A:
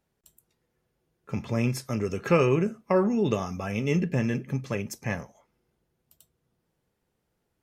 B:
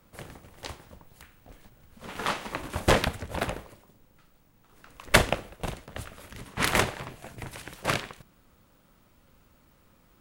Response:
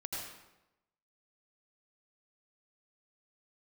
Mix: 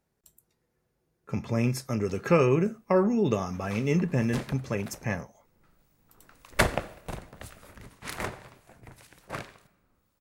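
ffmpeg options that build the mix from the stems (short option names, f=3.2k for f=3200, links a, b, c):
-filter_complex "[0:a]volume=0dB[a];[1:a]acrossover=split=2400[b][c];[b]aeval=exprs='val(0)*(1-0.5/2+0.5/2*cos(2*PI*1.9*n/s))':c=same[d];[c]aeval=exprs='val(0)*(1-0.5/2-0.5/2*cos(2*PI*1.9*n/s))':c=same[e];[d][e]amix=inputs=2:normalize=0,adelay=1450,volume=-2dB,afade=t=in:st=5.3:d=0.5:silence=0.298538,afade=t=out:st=7.71:d=0.35:silence=0.446684,asplit=2[f][g];[g]volume=-18.5dB[h];[2:a]atrim=start_sample=2205[i];[h][i]afir=irnorm=-1:irlink=0[j];[a][f][j]amix=inputs=3:normalize=0,equalizer=f=3.1k:w=2.7:g=-4.5"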